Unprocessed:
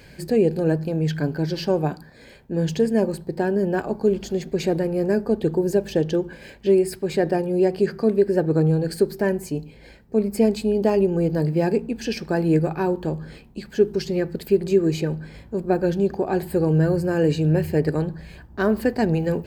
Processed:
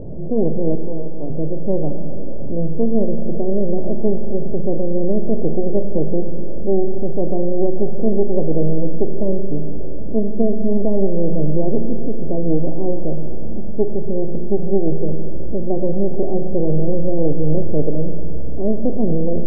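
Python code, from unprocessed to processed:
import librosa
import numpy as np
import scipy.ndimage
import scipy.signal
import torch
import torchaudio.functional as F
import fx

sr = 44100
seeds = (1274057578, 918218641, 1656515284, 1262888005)

y = x + 0.5 * 10.0 ** (-21.0 / 20.0) * np.sign(x)
y = fx.highpass(y, sr, hz=380.0, slope=12, at=(0.75, 1.3))
y = np.maximum(y, 0.0)
y = scipy.signal.sosfilt(scipy.signal.ellip(4, 1.0, 70, 640.0, 'lowpass', fs=sr, output='sos'), y)
y = fx.rev_schroeder(y, sr, rt60_s=3.1, comb_ms=31, drr_db=6.5)
y = y * 10.0 ** (2.5 / 20.0)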